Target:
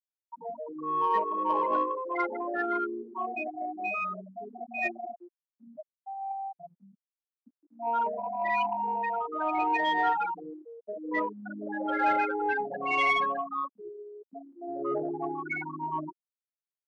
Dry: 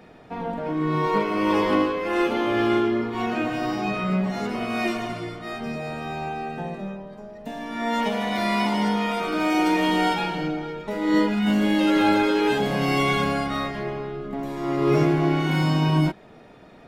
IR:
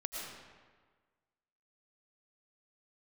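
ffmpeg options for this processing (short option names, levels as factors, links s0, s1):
-filter_complex "[0:a]afftfilt=real='re*gte(hypot(re,im),0.2)':imag='im*gte(hypot(re,im),0.2)':win_size=1024:overlap=0.75,highpass=820,asplit=2[s0][s1];[s1]asoftclip=type=tanh:threshold=0.0562,volume=0.708[s2];[s0][s2]amix=inputs=2:normalize=0,volume=0.841"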